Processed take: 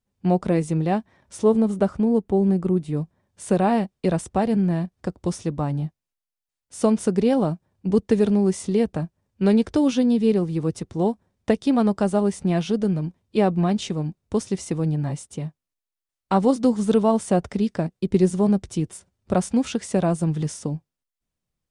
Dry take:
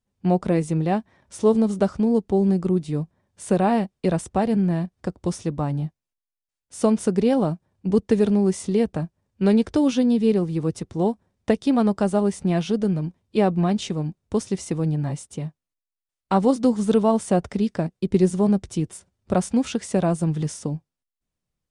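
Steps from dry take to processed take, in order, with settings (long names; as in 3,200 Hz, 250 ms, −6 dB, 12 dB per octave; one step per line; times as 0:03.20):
0:01.43–0:02.97: parametric band 5,300 Hz −7.5 dB 1.3 octaves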